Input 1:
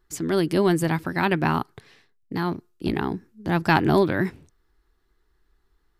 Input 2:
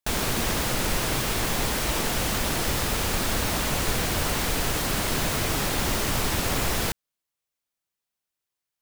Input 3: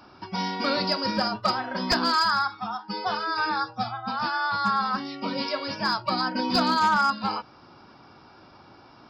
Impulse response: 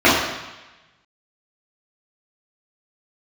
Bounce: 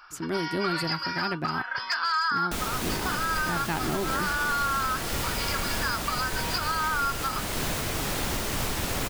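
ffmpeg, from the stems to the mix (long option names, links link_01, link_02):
-filter_complex "[0:a]volume=-6dB[link_01];[1:a]adelay=2450,volume=-3dB[link_02];[2:a]highpass=frequency=1400:width_type=q:width=2.4,alimiter=limit=-14.5dB:level=0:latency=1:release=67,bandreject=frequency=3800:width=12,volume=-1dB[link_03];[link_01][link_02][link_03]amix=inputs=3:normalize=0,alimiter=limit=-17.5dB:level=0:latency=1:release=282"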